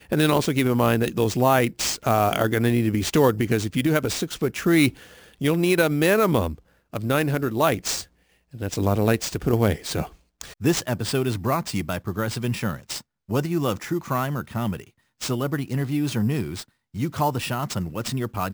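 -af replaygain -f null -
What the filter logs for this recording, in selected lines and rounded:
track_gain = +3.7 dB
track_peak = 0.347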